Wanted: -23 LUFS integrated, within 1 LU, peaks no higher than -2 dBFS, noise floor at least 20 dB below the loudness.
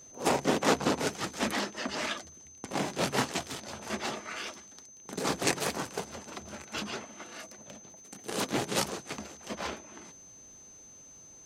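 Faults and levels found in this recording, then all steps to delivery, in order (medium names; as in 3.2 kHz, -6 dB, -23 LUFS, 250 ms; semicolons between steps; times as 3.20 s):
steady tone 6.2 kHz; tone level -50 dBFS; loudness -33.0 LUFS; peak level -9.5 dBFS; loudness target -23.0 LUFS
-> band-stop 6.2 kHz, Q 30; trim +10 dB; peak limiter -2 dBFS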